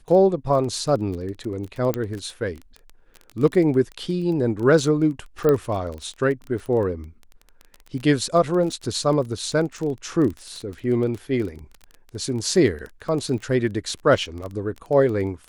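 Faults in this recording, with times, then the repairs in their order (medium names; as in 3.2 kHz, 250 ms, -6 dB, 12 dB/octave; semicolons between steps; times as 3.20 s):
crackle 21 per s -28 dBFS
1.94 s: pop -10 dBFS
5.49 s: pop -9 dBFS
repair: de-click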